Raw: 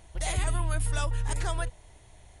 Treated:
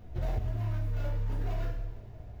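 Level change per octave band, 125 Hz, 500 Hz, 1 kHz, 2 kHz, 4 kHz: -0.5, -4.0, -10.0, -13.0, -15.5 dB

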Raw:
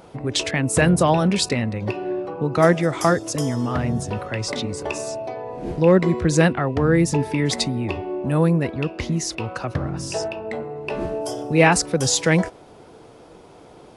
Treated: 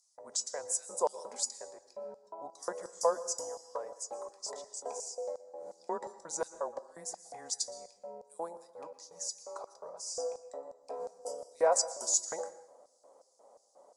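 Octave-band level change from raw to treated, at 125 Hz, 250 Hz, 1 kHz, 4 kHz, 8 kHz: under -40 dB, -34.5 dB, -13.5 dB, -15.5 dB, -6.5 dB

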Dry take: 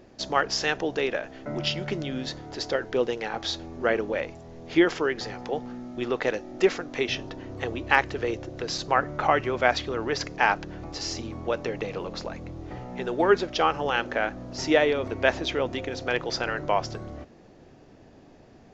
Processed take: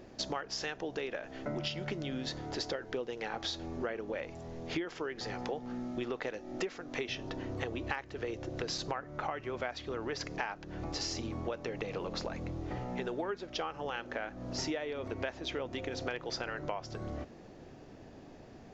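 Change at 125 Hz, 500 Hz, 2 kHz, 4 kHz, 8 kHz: -6.0 dB, -11.5 dB, -13.0 dB, -8.0 dB, n/a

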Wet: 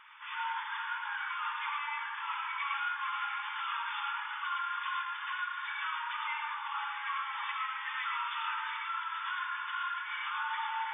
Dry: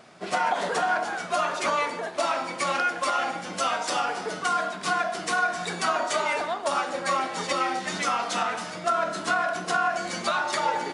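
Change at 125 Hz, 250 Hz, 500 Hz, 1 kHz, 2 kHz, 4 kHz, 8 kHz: under -40 dB, under -40 dB, under -40 dB, -9.0 dB, -7.0 dB, -8.0 dB, under -40 dB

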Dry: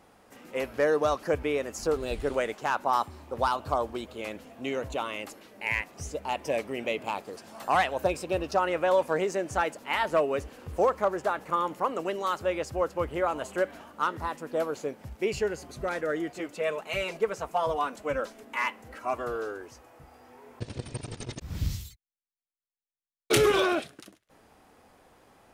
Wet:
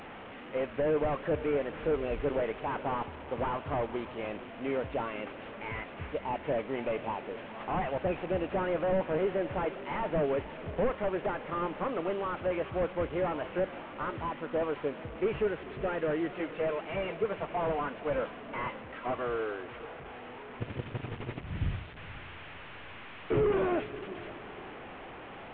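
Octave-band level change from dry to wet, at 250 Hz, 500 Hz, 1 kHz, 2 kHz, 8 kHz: 0.0 dB, -2.5 dB, -6.0 dB, -6.0 dB, under -35 dB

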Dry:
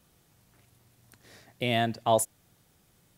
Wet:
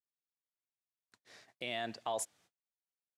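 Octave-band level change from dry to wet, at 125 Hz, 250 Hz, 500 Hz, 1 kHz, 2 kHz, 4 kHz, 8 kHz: -22.5, -16.0, -13.0, -11.5, -9.0, -9.0, -8.5 dB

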